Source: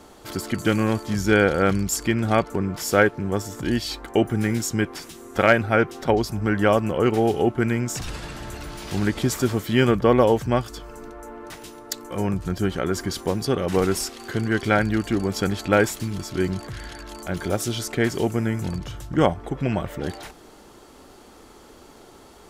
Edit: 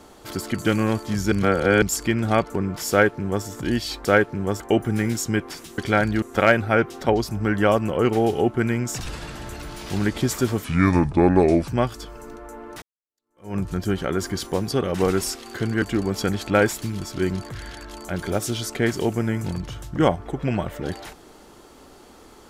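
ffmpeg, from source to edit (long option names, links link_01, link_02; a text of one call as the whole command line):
ffmpeg -i in.wav -filter_complex "[0:a]asplit=11[link_01][link_02][link_03][link_04][link_05][link_06][link_07][link_08][link_09][link_10][link_11];[link_01]atrim=end=1.322[link_12];[link_02]atrim=start=1.318:end=1.822,asetpts=PTS-STARTPTS,areverse[link_13];[link_03]atrim=start=1.818:end=4.052[link_14];[link_04]atrim=start=2.898:end=3.452[link_15];[link_05]atrim=start=4.048:end=5.232[link_16];[link_06]atrim=start=14.558:end=15.002[link_17];[link_07]atrim=start=5.228:end=9.654[link_18];[link_08]atrim=start=9.65:end=10.42,asetpts=PTS-STARTPTS,asetrate=32634,aresample=44100[link_19];[link_09]atrim=start=10.416:end=11.56,asetpts=PTS-STARTPTS,afade=type=out:start_time=1.14:duration=0.004:curve=hsin[link_20];[link_10]atrim=start=11.56:end=14.562,asetpts=PTS-STARTPTS,afade=type=in:duration=0.75:curve=exp[link_21];[link_11]atrim=start=14.998[link_22];[link_12][link_13]acrossfade=duration=0.004:curve1=hsin:curve2=hsin[link_23];[link_23][link_14]acrossfade=duration=0.004:curve1=hsin:curve2=hsin[link_24];[link_24][link_15]acrossfade=duration=0.004:curve1=hsin:curve2=hsin[link_25];[link_25][link_16]acrossfade=duration=0.004:curve1=hsin:curve2=hsin[link_26];[link_26][link_17]acrossfade=duration=0.004:curve1=hsin:curve2=hsin[link_27];[link_27][link_18]acrossfade=duration=0.004:curve1=hsin:curve2=hsin[link_28];[link_28][link_19]acrossfade=duration=0.004:curve1=hsin:curve2=hsin[link_29];[link_20][link_21]concat=n=2:v=0:a=1[link_30];[link_29][link_30]acrossfade=duration=0.004:curve1=hsin:curve2=hsin[link_31];[link_31][link_22]acrossfade=duration=0.004:curve1=hsin:curve2=hsin" out.wav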